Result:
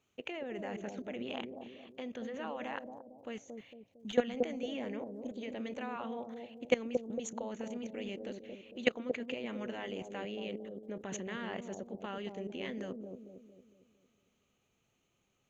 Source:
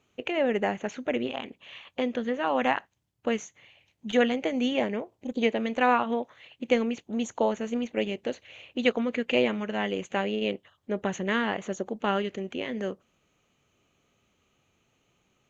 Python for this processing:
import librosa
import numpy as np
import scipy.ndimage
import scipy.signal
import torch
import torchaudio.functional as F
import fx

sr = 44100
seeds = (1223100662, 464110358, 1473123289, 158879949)

p1 = fx.high_shelf(x, sr, hz=4500.0, db=5.5)
p2 = fx.level_steps(p1, sr, step_db=19)
p3 = p2 + fx.echo_bbd(p2, sr, ms=227, stages=1024, feedback_pct=47, wet_db=-4.0, dry=0)
y = F.gain(torch.from_numpy(p3), -3.0).numpy()